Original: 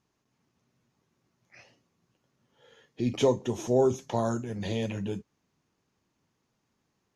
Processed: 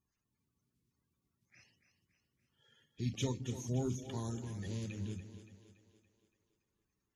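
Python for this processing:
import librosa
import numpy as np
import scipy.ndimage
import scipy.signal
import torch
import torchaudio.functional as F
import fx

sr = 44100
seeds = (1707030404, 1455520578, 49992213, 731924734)

y = fx.spec_quant(x, sr, step_db=30)
y = fx.tone_stack(y, sr, knobs='6-0-2')
y = fx.echo_split(y, sr, split_hz=310.0, low_ms=176, high_ms=284, feedback_pct=52, wet_db=-11.0)
y = y * librosa.db_to_amplitude(9.5)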